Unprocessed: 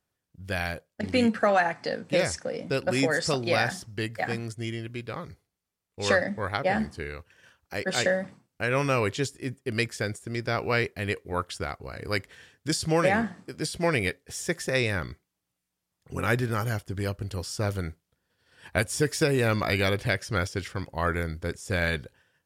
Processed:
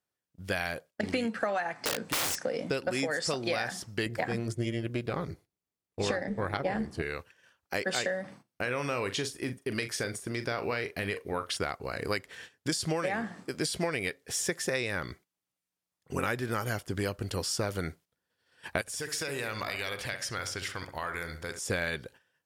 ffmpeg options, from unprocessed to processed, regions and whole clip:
-filter_complex "[0:a]asettb=1/sr,asplit=3[s0][s1][s2];[s0]atrim=end=1.854[s3];[s1]atrim=start=1.85:end=2.45,asetpts=PTS-STARTPTS,afade=t=in:d=0.004:c=qsin,afade=t=out:st=0.596:d=0.004:c=qsin,asplit=2[s4][s5];[s5]adelay=31,volume=0.211[s6];[s4][s6]amix=inputs=2:normalize=0,atrim=end_sample=26460,aeval=exprs='(mod(17.8*val(0)+1,2)-1)/17.8':c=same[s7];[s2]atrim=start=2.446[s8];[s3][s7]acrossfade=d=0.004:c1=hsin:c2=qsin[s9];[s9][s8]acrossfade=d=0.004:c1=qsin:c2=hsin,asettb=1/sr,asplit=3[s10][s11][s12];[s10]atrim=end=4.064[s13];[s11]atrim=start=4.06:end=7.02,asetpts=PTS-STARTPTS,afade=t=in:d=0.004:c=qsin,afade=t=out:st=2.956:d=0.004:c=qsin,lowshelf=f=390:g=10,tremolo=f=240:d=0.571[s14];[s12]atrim=start=7.016[s15];[s13][s14]acrossfade=d=0.004:c1=hsin:c2=qsin[s16];[s16][s15]acrossfade=d=0.004:c1=qsin:c2=hsin,asettb=1/sr,asplit=3[s17][s18][s19];[s17]atrim=end=8.214[s20];[s18]atrim=start=8.21:end=11.57,asetpts=PTS-STARTPTS,afade=t=in:d=0.004:c=qsin,afade=t=out:st=3.356:d=0.004:c=qsin,bandreject=f=7400:w=7.6,acompressor=threshold=0.0282:ratio=3:attack=3.2:release=140:knee=1:detection=peak,asplit=2[s21][s22];[s22]adelay=41,volume=0.282[s23];[s21][s23]amix=inputs=2:normalize=0,atrim=end_sample=148176[s24];[s19]atrim=start=11.566[s25];[s20][s24]acrossfade=d=0.004:c1=hsin:c2=qsin[s26];[s26][s25]acrossfade=d=0.004:c1=qsin:c2=hsin,asettb=1/sr,asplit=3[s27][s28][s29];[s27]atrim=end=18.814[s30];[s28]atrim=start=18.81:end=21.59,asetpts=PTS-STARTPTS,afade=t=in:d=0.004:c=qsin,afade=t=out:st=2.776:d=0.004:c=qsin,equalizer=f=240:w=0.44:g=-11,acompressor=threshold=0.02:ratio=10:attack=3.2:release=140:knee=1:detection=peak,asplit=2[s31][s32];[s32]adelay=64,lowpass=f=1900:p=1,volume=0.398,asplit=2[s33][s34];[s34]adelay=64,lowpass=f=1900:p=1,volume=0.48,asplit=2[s35][s36];[s36]adelay=64,lowpass=f=1900:p=1,volume=0.48,asplit=2[s37][s38];[s38]adelay=64,lowpass=f=1900:p=1,volume=0.48,asplit=2[s39][s40];[s40]adelay=64,lowpass=f=1900:p=1,volume=0.48,asplit=2[s41][s42];[s42]adelay=64,lowpass=f=1900:p=1,volume=0.48[s43];[s31][s33][s35][s37][s39][s41][s43]amix=inputs=7:normalize=0,atrim=end_sample=122598[s44];[s29]atrim=start=21.586[s45];[s30][s44]acrossfade=d=0.004:c1=hsin:c2=qsin[s46];[s46][s45]acrossfade=d=0.004:c1=qsin:c2=hsin,agate=range=0.282:threshold=0.00282:ratio=16:detection=peak,lowshelf=f=130:g=-12,acompressor=threshold=0.0251:ratio=12,volume=1.78"

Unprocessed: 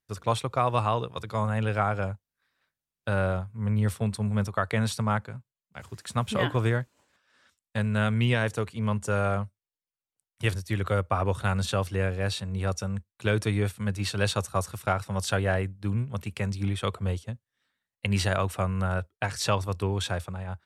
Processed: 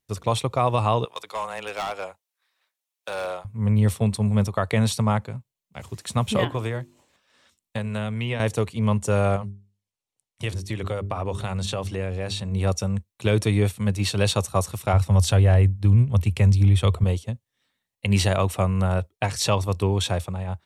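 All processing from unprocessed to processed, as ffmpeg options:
-filter_complex "[0:a]asettb=1/sr,asplit=3[s0][s1][s2];[s0]atrim=end=1.054[s3];[s1]atrim=start=1.05:end=3.45,asetpts=PTS-STARTPTS,afade=t=in:d=0.004:c=qsin,afade=t=out:st=2.396:d=0.004:c=qsin,highpass=720,afreqshift=-15,asoftclip=type=hard:threshold=0.0422[s4];[s2]atrim=start=3.446[s5];[s3][s4]acrossfade=d=0.004:c1=hsin:c2=qsin[s6];[s6][s5]acrossfade=d=0.004:c1=qsin:c2=hsin,asettb=1/sr,asplit=3[s7][s8][s9];[s7]atrim=end=6.444[s10];[s8]atrim=start=6.44:end=8.4,asetpts=PTS-STARTPTS,afade=t=in:d=0.004:c=qsin,afade=t=out:st=1.956:d=0.004:c=qsin,bandreject=f=50:t=h:w=6,bandreject=f=100:t=h:w=6,bandreject=f=150:t=h:w=6,bandreject=f=200:t=h:w=6,bandreject=f=250:t=h:w=6,bandreject=f=300:t=h:w=6,bandreject=f=350:t=h:w=6,bandreject=f=400:t=h:w=6,acrossover=split=500|2600[s11][s12][s13];[s11]acompressor=threshold=0.02:ratio=4[s14];[s12]acompressor=threshold=0.0178:ratio=4[s15];[s13]acompressor=threshold=0.00355:ratio=4[s16];[s14][s15][s16]amix=inputs=3:normalize=0[s17];[s9]atrim=start=8.396[s18];[s10][s17]acrossfade=d=0.004:c1=hsin:c2=qsin[s19];[s19][s18]acrossfade=d=0.004:c1=qsin:c2=hsin,asettb=1/sr,asplit=3[s20][s21][s22];[s20]atrim=end=9.364[s23];[s21]atrim=start=9.36:end=12.52,asetpts=PTS-STARTPTS,afade=t=in:d=0.004:c=qsin,afade=t=out:st=3.156:d=0.004:c=qsin,lowpass=10000,bandreject=f=50:t=h:w=6,bandreject=f=100:t=h:w=6,bandreject=f=150:t=h:w=6,bandreject=f=200:t=h:w=6,bandreject=f=250:t=h:w=6,bandreject=f=300:t=h:w=6,bandreject=f=350:t=h:w=6,bandreject=f=400:t=h:w=6,acompressor=threshold=0.0282:ratio=2.5:attack=3.2:release=140:knee=1:detection=peak[s24];[s22]atrim=start=12.516[s25];[s23][s24]acrossfade=d=0.004:c1=hsin:c2=qsin[s26];[s26][s25]acrossfade=d=0.004:c1=qsin:c2=hsin,asettb=1/sr,asplit=3[s27][s28][s29];[s27]atrim=end=14.934[s30];[s28]atrim=start=14.93:end=17.04,asetpts=PTS-STARTPTS,afade=t=in:d=0.004:c=qsin,afade=t=out:st=2.106:d=0.004:c=qsin,deesser=0.35,equalizer=f=80:w=1.4:g=13.5[s31];[s29]atrim=start=17.036[s32];[s30][s31]acrossfade=d=0.004:c1=hsin:c2=qsin[s33];[s33][s32]acrossfade=d=0.004:c1=qsin:c2=hsin,equalizer=f=1500:t=o:w=0.53:g=-9,bandreject=f=4800:w=21,alimiter=level_in=5.31:limit=0.891:release=50:level=0:latency=1,volume=0.376"

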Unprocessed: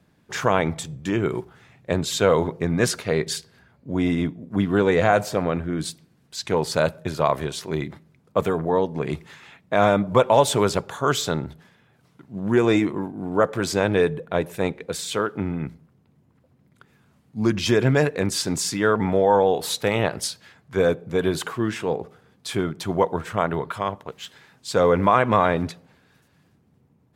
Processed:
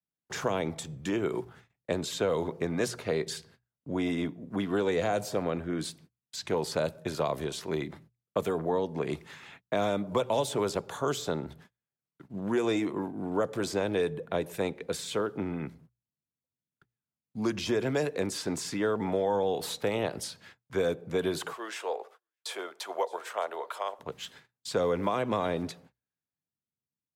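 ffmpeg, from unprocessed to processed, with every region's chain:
-filter_complex "[0:a]asettb=1/sr,asplit=3[s0][s1][s2];[s0]atrim=end=21.534[s3];[s1]atrim=start=21.53:end=23.99,asetpts=PTS-STARTPTS,afade=t=in:d=0.004:c=qsin,afade=t=out:st=2.456:d=0.004:c=qsin,highpass=f=530:w=0.5412,highpass=f=530:w=1.3066,aecho=1:1:616:0.0668,atrim=end_sample=108486[s4];[s2]atrim=start=23.986[s5];[s3][s4]acrossfade=d=0.004:c1=hsin:c2=qsin[s6];[s6][s5]acrossfade=d=0.004:c1=qsin:c2=hsin,agate=range=0.0158:threshold=0.00398:ratio=16:detection=peak,bandreject=f=60:t=h:w=6,bandreject=f=120:t=h:w=6,acrossover=split=240|480|1000|3000[s7][s8][s9][s10][s11];[s7]acompressor=threshold=0.0126:ratio=4[s12];[s8]acompressor=threshold=0.0398:ratio=4[s13];[s9]acompressor=threshold=0.0282:ratio=4[s14];[s10]acompressor=threshold=0.00891:ratio=4[s15];[s11]acompressor=threshold=0.0158:ratio=4[s16];[s12][s13][s14][s15][s16]amix=inputs=5:normalize=0,volume=0.75"

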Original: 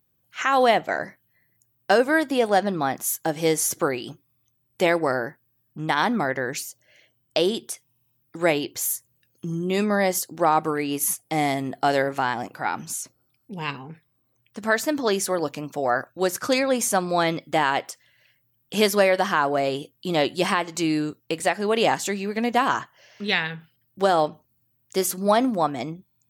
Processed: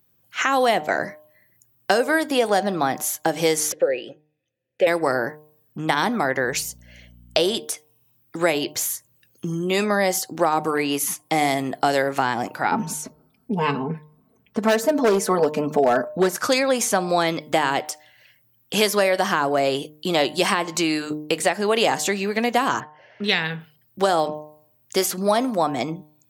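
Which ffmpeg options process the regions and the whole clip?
-filter_complex "[0:a]asettb=1/sr,asplit=3[s0][s1][s2];[s0]atrim=end=3.724[s3];[s1]atrim=start=3.72:end=4.87,asetpts=PTS-STARTPTS,afade=t=in:d=0.004:c=qsin,afade=t=out:st=1.146:d=0.004:c=qsin,asplit=3[s4][s5][s6];[s4]bandpass=f=530:t=q:w=8,volume=1[s7];[s5]bandpass=f=1840:t=q:w=8,volume=0.501[s8];[s6]bandpass=f=2480:t=q:w=8,volume=0.355[s9];[s7][s8][s9]amix=inputs=3:normalize=0,lowshelf=f=170:g=11,acontrast=61[s10];[s2]atrim=start=4.866[s11];[s3][s10]acrossfade=d=0.004:c1=hsin:c2=qsin[s12];[s12][s11]acrossfade=d=0.004:c1=qsin:c2=hsin,asettb=1/sr,asplit=3[s13][s14][s15];[s13]atrim=end=6.444[s16];[s14]atrim=start=6.44:end=7.58,asetpts=PTS-STARTPTS,afade=t=in:d=0.004:c=qsin,afade=t=out:st=1.136:d=0.004:c=qsin,aeval=exprs='val(0)+0.00282*(sin(2*PI*60*n/s)+sin(2*PI*2*60*n/s)/2+sin(2*PI*3*60*n/s)/3+sin(2*PI*4*60*n/s)/4+sin(2*PI*5*60*n/s)/5)':c=same,bandreject=f=290:w=5.4[s17];[s15]atrim=start=7.576[s18];[s16][s17]acrossfade=d=0.004:c1=hsin:c2=qsin[s19];[s19][s18]acrossfade=d=0.004:c1=qsin:c2=hsin,asettb=1/sr,asplit=3[s20][s21][s22];[s20]atrim=end=12.714[s23];[s21]atrim=start=12.71:end=16.36,asetpts=PTS-STARTPTS,afade=t=in:d=0.004:c=qsin,afade=t=out:st=3.646:d=0.004:c=qsin,tiltshelf=f=1300:g=9,aecho=1:1:4.6:0.89,atrim=end_sample=160965,volume=2.99,asoftclip=hard,volume=0.335[s24];[s22]atrim=start=16.356[s25];[s23][s24]acrossfade=d=0.004:c1=hsin:c2=qsin[s26];[s26][s25]acrossfade=d=0.004:c1=qsin:c2=hsin,asettb=1/sr,asplit=3[s27][s28][s29];[s27]atrim=end=22.804[s30];[s28]atrim=start=22.8:end=23.24,asetpts=PTS-STARTPTS,afade=t=in:d=0.004:c=qsin,afade=t=out:st=0.436:d=0.004:c=qsin,lowpass=1700,equalizer=f=1100:w=6.2:g=-11.5[s31];[s29]atrim=start=23.236[s32];[s30][s31]acrossfade=d=0.004:c1=hsin:c2=qsin[s33];[s33][s32]acrossfade=d=0.004:c1=qsin:c2=hsin,lowshelf=f=130:g=-5.5,bandreject=f=151.7:t=h:w=4,bandreject=f=303.4:t=h:w=4,bandreject=f=455.1:t=h:w=4,bandreject=f=606.8:t=h:w=4,bandreject=f=758.5:t=h:w=4,bandreject=f=910.2:t=h:w=4,bandreject=f=1061.9:t=h:w=4,acrossover=split=460|5200[s34][s35][s36];[s34]acompressor=threshold=0.0251:ratio=4[s37];[s35]acompressor=threshold=0.0501:ratio=4[s38];[s36]acompressor=threshold=0.0224:ratio=4[s39];[s37][s38][s39]amix=inputs=3:normalize=0,volume=2.24"

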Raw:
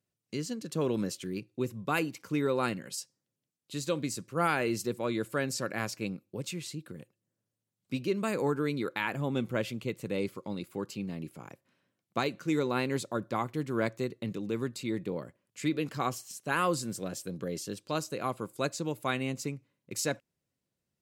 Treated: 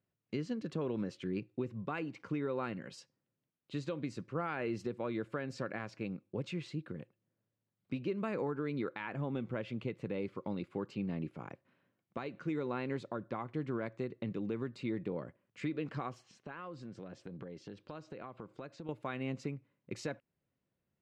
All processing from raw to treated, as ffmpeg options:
-filter_complex "[0:a]asettb=1/sr,asplit=3[s0][s1][s2];[s0]atrim=end=16.234[s3];[s1]atrim=start=16.23:end=18.89,asetpts=PTS-STARTPTS,afade=t=in:d=0.004:c=qsin,afade=t=out:st=2.656:d=0.004:c=qsin,lowpass=6100,acompressor=threshold=0.00708:ratio=8:attack=3.2:release=140:knee=1:detection=peak[s4];[s2]atrim=start=18.886[s5];[s3][s4]acrossfade=d=0.004:c1=hsin:c2=qsin[s6];[s6][s5]acrossfade=d=0.004:c1=qsin:c2=hsin,lowpass=2500,acompressor=threshold=0.0282:ratio=6,alimiter=level_in=1.41:limit=0.0631:level=0:latency=1:release=377,volume=0.708,volume=1.12"

